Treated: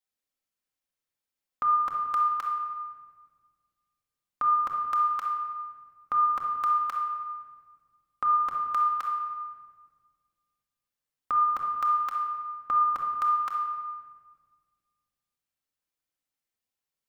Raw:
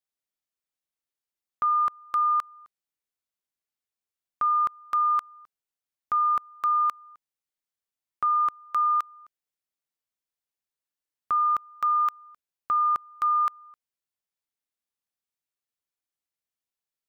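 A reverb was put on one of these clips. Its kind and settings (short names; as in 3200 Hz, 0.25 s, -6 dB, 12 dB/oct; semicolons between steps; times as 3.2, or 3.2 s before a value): shoebox room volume 2000 m³, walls mixed, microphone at 2.1 m; gain -1 dB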